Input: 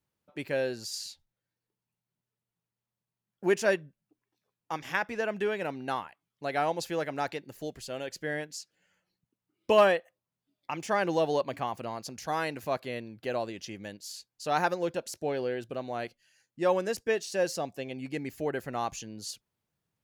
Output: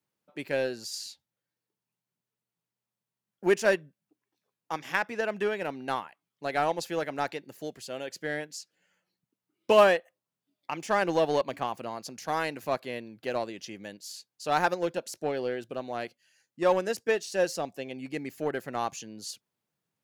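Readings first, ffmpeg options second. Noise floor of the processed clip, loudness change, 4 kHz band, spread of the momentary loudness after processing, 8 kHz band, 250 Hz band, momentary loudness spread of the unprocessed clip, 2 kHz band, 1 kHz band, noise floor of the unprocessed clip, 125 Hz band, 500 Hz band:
under -85 dBFS, +1.5 dB, +1.0 dB, 16 LU, +0.5 dB, +0.5 dB, 14 LU, +2.0 dB, +1.5 dB, under -85 dBFS, -1.5 dB, +1.5 dB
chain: -filter_complex "[0:a]highpass=150,asplit=2[a][b];[b]acrusher=bits=3:mix=0:aa=0.5,volume=-12dB[c];[a][c]amix=inputs=2:normalize=0"

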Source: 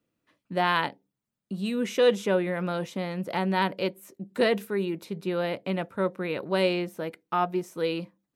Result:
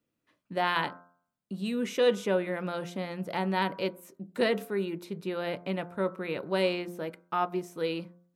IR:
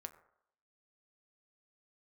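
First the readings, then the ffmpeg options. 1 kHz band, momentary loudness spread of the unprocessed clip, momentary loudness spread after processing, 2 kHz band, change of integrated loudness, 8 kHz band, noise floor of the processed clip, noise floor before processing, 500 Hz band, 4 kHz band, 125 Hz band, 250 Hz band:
-3.0 dB, 10 LU, 9 LU, -3.0 dB, -3.0 dB, -3.0 dB, -82 dBFS, under -85 dBFS, -3.0 dB, -3.0 dB, -4.5 dB, -3.5 dB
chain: -filter_complex "[0:a]bandreject=f=87.59:t=h:w=4,bandreject=f=175.18:t=h:w=4,bandreject=f=262.77:t=h:w=4,bandreject=f=350.36:t=h:w=4,bandreject=f=437.95:t=h:w=4,bandreject=f=525.54:t=h:w=4,bandreject=f=613.13:t=h:w=4,bandreject=f=700.72:t=h:w=4,bandreject=f=788.31:t=h:w=4,bandreject=f=875.9:t=h:w=4,bandreject=f=963.49:t=h:w=4,bandreject=f=1.05108k:t=h:w=4,bandreject=f=1.13867k:t=h:w=4,bandreject=f=1.22626k:t=h:w=4,bandreject=f=1.31385k:t=h:w=4,bandreject=f=1.40144k:t=h:w=4,bandreject=f=1.48903k:t=h:w=4,bandreject=f=1.57662k:t=h:w=4,asplit=2[a][b];[1:a]atrim=start_sample=2205,atrim=end_sample=6174[c];[b][c]afir=irnorm=-1:irlink=0,volume=-5.5dB[d];[a][d]amix=inputs=2:normalize=0,volume=-5dB"

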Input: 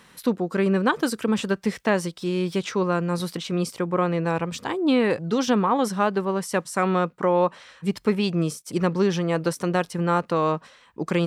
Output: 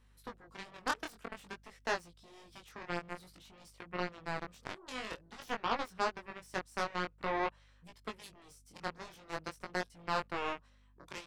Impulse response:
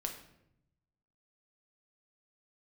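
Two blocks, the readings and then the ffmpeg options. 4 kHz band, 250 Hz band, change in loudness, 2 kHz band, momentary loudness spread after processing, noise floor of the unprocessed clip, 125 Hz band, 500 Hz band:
-11.5 dB, -24.0 dB, -15.5 dB, -9.5 dB, 18 LU, -54 dBFS, -24.0 dB, -19.0 dB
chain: -filter_complex "[0:a]acrossover=split=470|3900[a][b][c];[a]acompressor=threshold=-32dB:ratio=6[d];[d][b][c]amix=inputs=3:normalize=0,aeval=exprs='val(0)+0.00708*(sin(2*PI*50*n/s)+sin(2*PI*2*50*n/s)/2+sin(2*PI*3*50*n/s)/3+sin(2*PI*4*50*n/s)/4+sin(2*PI*5*50*n/s)/5)':c=same,aeval=exprs='0.398*(cos(1*acos(clip(val(0)/0.398,-1,1)))-cos(1*PI/2))+0.0224*(cos(5*acos(clip(val(0)/0.398,-1,1)))-cos(5*PI/2))+0.0891*(cos(7*acos(clip(val(0)/0.398,-1,1)))-cos(7*PI/2))':c=same,flanger=delay=17:depth=6.3:speed=0.51,volume=-7.5dB"

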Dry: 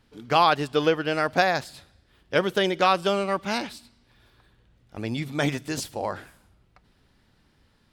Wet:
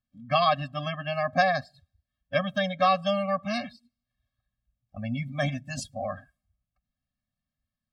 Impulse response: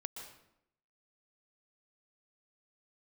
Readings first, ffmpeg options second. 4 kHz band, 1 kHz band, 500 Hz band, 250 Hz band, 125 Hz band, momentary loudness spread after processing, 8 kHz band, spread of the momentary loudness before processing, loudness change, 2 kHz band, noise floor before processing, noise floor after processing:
-4.5 dB, -2.5 dB, -3.5 dB, -4.0 dB, 0.0 dB, 12 LU, -6.5 dB, 11 LU, -3.0 dB, -3.0 dB, -64 dBFS, under -85 dBFS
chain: -af "afftdn=nr=24:nf=-39,afftfilt=real='re*eq(mod(floor(b*sr/1024/260),2),0)':imag='im*eq(mod(floor(b*sr/1024/260),2),0)':win_size=1024:overlap=0.75"

